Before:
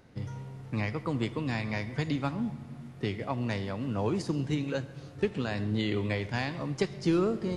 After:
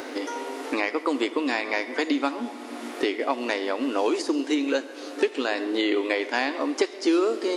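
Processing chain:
linear-phase brick-wall high-pass 250 Hz
multiband upward and downward compressor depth 70%
level +8.5 dB

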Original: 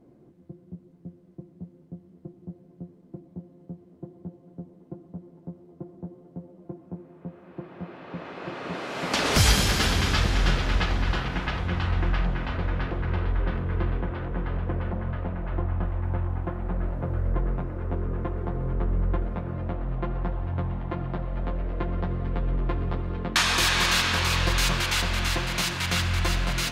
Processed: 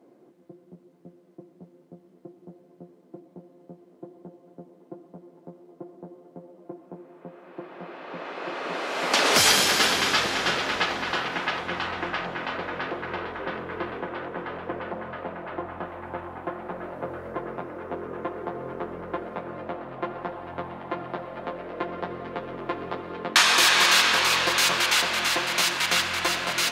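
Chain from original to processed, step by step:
high-pass filter 370 Hz 12 dB per octave
level +4.5 dB

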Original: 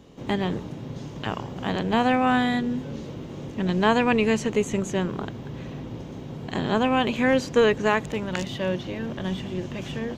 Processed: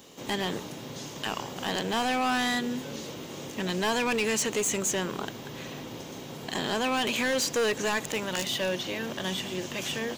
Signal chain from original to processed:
in parallel at 0 dB: brickwall limiter −19.5 dBFS, peak gain reduction 11.5 dB
on the sum: RIAA equalisation recording
hard clipping −19 dBFS, distortion −8 dB
level −4 dB

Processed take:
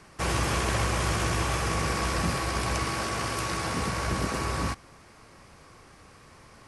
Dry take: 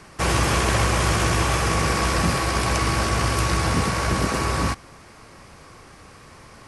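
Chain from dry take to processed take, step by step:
0:02.84–0:03.81: high-pass filter 170 Hz 6 dB per octave
level −6.5 dB

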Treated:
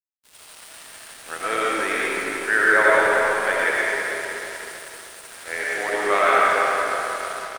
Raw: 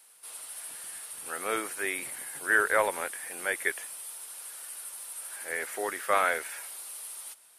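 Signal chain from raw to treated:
parametric band 5,500 Hz +10 dB 2.8 octaves
on a send: repeating echo 315 ms, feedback 57%, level −9.5 dB
on the sum: convolution reverb RT60 2.9 s, pre-delay 55 ms, DRR −6.5 dB
in parallel at 0 dB: downward compressor, threshold −28 dBFS, peak gain reduction 15.5 dB
on the sum: low-pass filter 9,300 Hz 24 dB per octave
high-shelf EQ 3,400 Hz −11.5 dB
dead-zone distortion −38 dBFS

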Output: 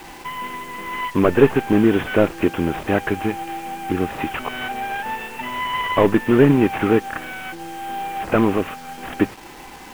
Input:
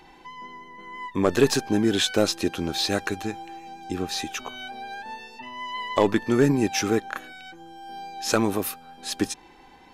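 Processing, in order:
variable-slope delta modulation 16 kbit/s
in parallel at −2.5 dB: downward compressor, threshold −36 dBFS, peak gain reduction 20.5 dB
on the sum: bit reduction 8 bits
level +6.5 dB

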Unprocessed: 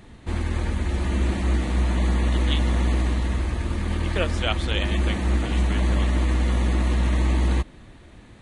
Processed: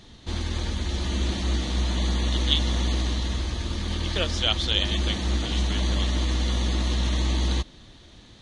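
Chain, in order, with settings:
flat-topped bell 4,500 Hz +12.5 dB 1.3 octaves
level −3.5 dB

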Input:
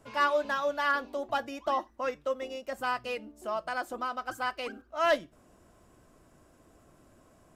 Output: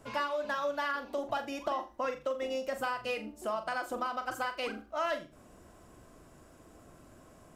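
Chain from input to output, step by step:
downward compressor 6 to 1, threshold −34 dBFS, peak gain reduction 12.5 dB
flutter between parallel walls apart 7.2 metres, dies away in 0.28 s
level +3.5 dB

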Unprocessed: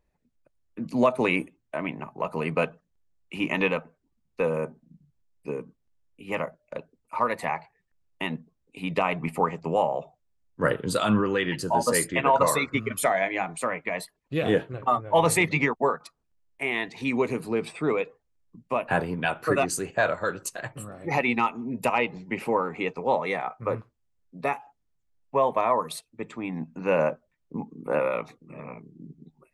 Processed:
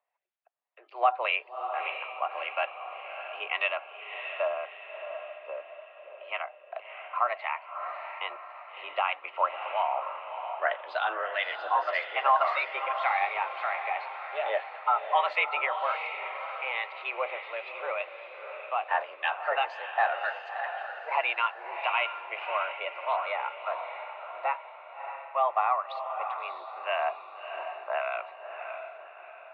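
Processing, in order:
two-band tremolo in antiphase 1.8 Hz, depth 50%, crossover 1,300 Hz
on a send: feedback delay with all-pass diffusion 638 ms, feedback 46%, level −7.5 dB
on the sum: single-sideband voice off tune +120 Hz 510–3,300 Hz

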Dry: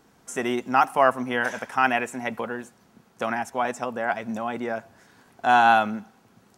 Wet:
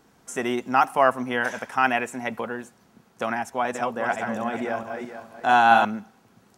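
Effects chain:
0:03.51–0:05.85: feedback delay that plays each chunk backwards 220 ms, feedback 50%, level −5 dB

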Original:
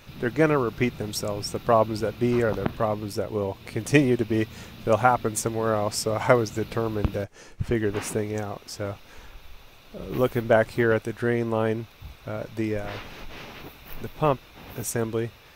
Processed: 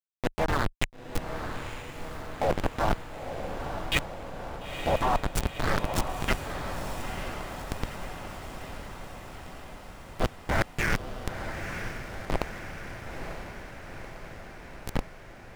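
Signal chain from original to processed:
auto-filter high-pass saw up 0.41 Hz 550–5,100 Hz
pitch-shifted copies added +3 semitones −4 dB, +5 semitones −2 dB, +7 semitones −4 dB
centre clipping without the shift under −16 dBFS
leveller curve on the samples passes 5
spectral tilt −3.5 dB per octave
brickwall limiter −7.5 dBFS, peak gain reduction 16.5 dB
low-shelf EQ 480 Hz +6 dB
reversed playback
downward compressor, threshold −21 dBFS, peak gain reduction 11.5 dB
reversed playback
feedback delay with all-pass diffusion 937 ms, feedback 67%, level −7 dB
level −1.5 dB

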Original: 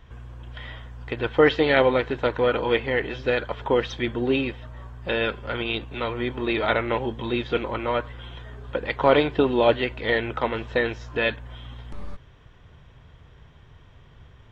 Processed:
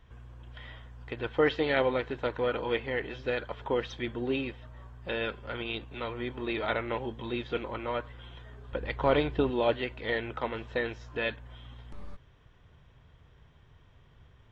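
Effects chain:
0:08.72–0:09.50: low-shelf EQ 110 Hz +11.5 dB
level −8 dB

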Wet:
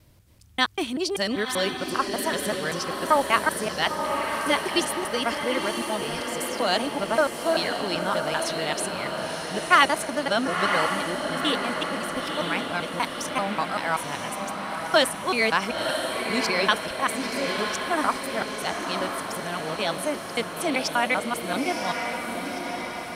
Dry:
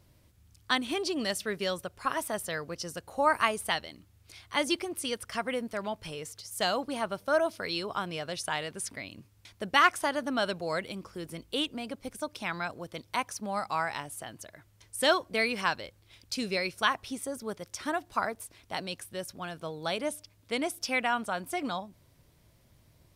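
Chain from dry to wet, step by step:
reversed piece by piece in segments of 194 ms
feedback delay with all-pass diffusion 984 ms, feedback 60%, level −4.5 dB
level +5 dB

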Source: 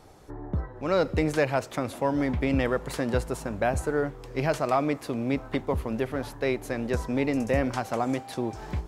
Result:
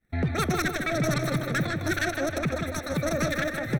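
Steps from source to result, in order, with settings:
phase distortion by the signal itself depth 0.3 ms
camcorder AGC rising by 17 dB per second
downward expander −35 dBFS
low-shelf EQ 71 Hz +7 dB
notch filter 2,000 Hz, Q 5.4
comb filter 1.2 ms, depth 90%
in parallel at −1 dB: output level in coarse steps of 13 dB
on the sum: hard clipping −12.5 dBFS, distortion −20 dB
on a send: feedback echo with a low-pass in the loop 364 ms, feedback 53%, low-pass 2,000 Hz, level −5.5 dB
on the sum: wrong playback speed 33 rpm record played at 78 rpm
level −7.5 dB

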